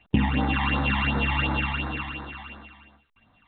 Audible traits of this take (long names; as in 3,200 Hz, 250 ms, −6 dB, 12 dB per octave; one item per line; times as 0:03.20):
a buzz of ramps at a fixed pitch in blocks of 16 samples
phaser sweep stages 12, 2.8 Hz, lowest notch 440–2,800 Hz
A-law companding